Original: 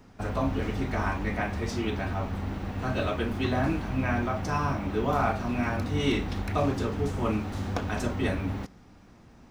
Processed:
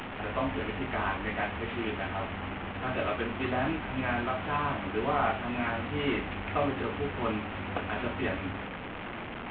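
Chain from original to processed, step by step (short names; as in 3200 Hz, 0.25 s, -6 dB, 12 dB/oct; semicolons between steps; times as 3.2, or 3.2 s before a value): delta modulation 16 kbps, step -29.5 dBFS; low shelf 250 Hz -9.5 dB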